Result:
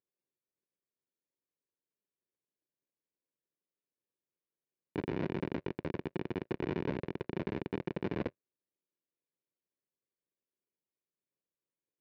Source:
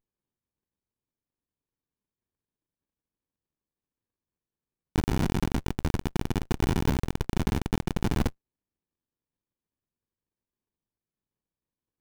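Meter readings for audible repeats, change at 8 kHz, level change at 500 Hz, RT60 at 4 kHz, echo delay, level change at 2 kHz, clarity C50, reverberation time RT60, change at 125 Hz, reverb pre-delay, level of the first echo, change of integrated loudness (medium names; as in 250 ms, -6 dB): no echo, under -30 dB, -2.0 dB, no reverb, no echo, -7.0 dB, no reverb, no reverb, -12.5 dB, no reverb, no echo, -8.5 dB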